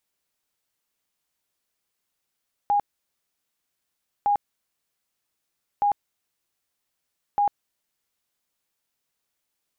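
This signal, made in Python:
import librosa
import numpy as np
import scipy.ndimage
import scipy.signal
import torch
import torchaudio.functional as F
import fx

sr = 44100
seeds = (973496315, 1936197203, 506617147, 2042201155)

y = fx.tone_burst(sr, hz=818.0, cycles=80, every_s=1.56, bursts=4, level_db=-17.5)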